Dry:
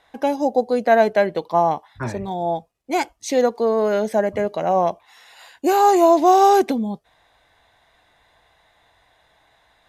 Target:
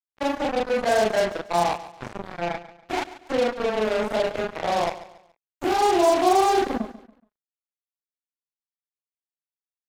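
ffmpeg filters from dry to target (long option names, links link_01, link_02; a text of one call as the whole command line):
ffmpeg -i in.wav -filter_complex "[0:a]afftfilt=real='re':imag='-im':win_size=4096:overlap=0.75,acrossover=split=170|2900[link_01][link_02][link_03];[link_03]acompressor=threshold=-52dB:ratio=6[link_04];[link_01][link_02][link_04]amix=inputs=3:normalize=0,acrusher=bits=3:mix=0:aa=0.5,aecho=1:1:141|282|423:0.168|0.0571|0.0194,volume=-1dB" out.wav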